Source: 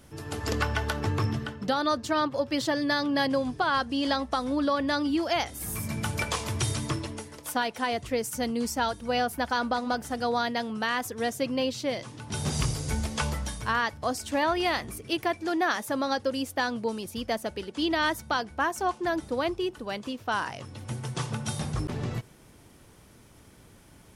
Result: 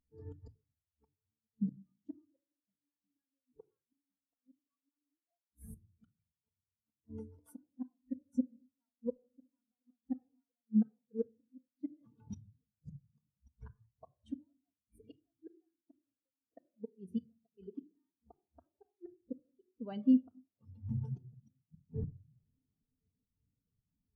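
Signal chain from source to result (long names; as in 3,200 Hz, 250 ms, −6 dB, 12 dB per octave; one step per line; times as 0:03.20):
gate with flip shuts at −22 dBFS, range −34 dB
feedback echo with a long and a short gap by turns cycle 1,420 ms, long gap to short 3 to 1, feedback 65%, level −23.5 dB
rectangular room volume 3,100 cubic metres, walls furnished, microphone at 1.7 metres
every bin expanded away from the loudest bin 2.5 to 1
level +1 dB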